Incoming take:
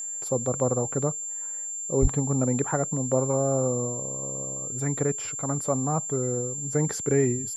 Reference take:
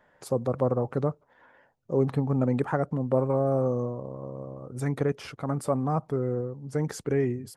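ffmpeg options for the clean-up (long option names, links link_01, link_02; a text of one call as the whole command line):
ffmpeg -i in.wav -filter_complex "[0:a]bandreject=frequency=7300:width=30,asplit=3[link_01][link_02][link_03];[link_01]afade=type=out:start_time=2.01:duration=0.02[link_04];[link_02]highpass=frequency=140:width=0.5412,highpass=frequency=140:width=1.3066,afade=type=in:start_time=2.01:duration=0.02,afade=type=out:start_time=2.13:duration=0.02[link_05];[link_03]afade=type=in:start_time=2.13:duration=0.02[link_06];[link_04][link_05][link_06]amix=inputs=3:normalize=0,asetnsamples=nb_out_samples=441:pad=0,asendcmd='6.58 volume volume -3dB',volume=0dB" out.wav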